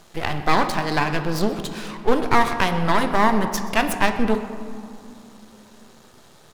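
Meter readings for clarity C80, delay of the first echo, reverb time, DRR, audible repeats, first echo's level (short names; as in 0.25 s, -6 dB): 9.5 dB, 0.128 s, 2.6 s, 7.0 dB, 1, -19.0 dB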